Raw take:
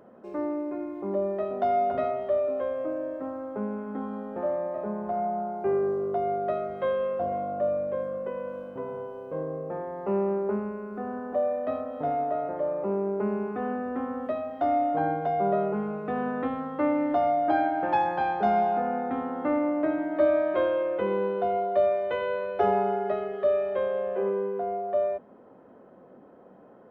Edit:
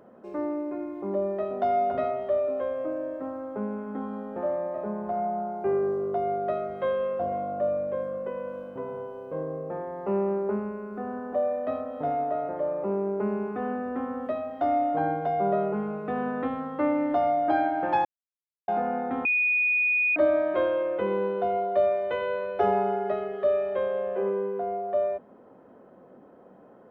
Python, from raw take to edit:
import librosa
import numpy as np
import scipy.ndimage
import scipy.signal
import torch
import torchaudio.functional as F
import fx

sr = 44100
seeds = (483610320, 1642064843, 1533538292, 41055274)

y = fx.edit(x, sr, fx.silence(start_s=18.05, length_s=0.63),
    fx.bleep(start_s=19.25, length_s=0.91, hz=2470.0, db=-20.5), tone=tone)